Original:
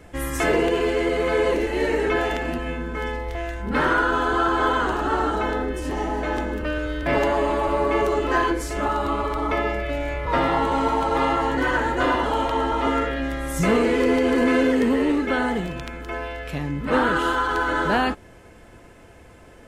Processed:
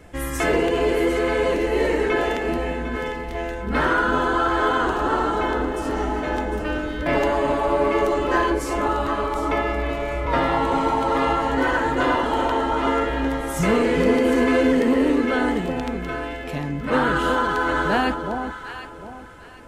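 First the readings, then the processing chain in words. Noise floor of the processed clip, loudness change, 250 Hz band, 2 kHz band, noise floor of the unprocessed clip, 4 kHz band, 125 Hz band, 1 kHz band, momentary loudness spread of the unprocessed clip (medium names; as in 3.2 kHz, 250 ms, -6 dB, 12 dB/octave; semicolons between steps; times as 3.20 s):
-36 dBFS, +1.0 dB, +1.5 dB, +0.5 dB, -47 dBFS, +0.5 dB, +0.5 dB, +1.0 dB, 9 LU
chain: echo whose repeats swap between lows and highs 376 ms, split 970 Hz, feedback 52%, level -5 dB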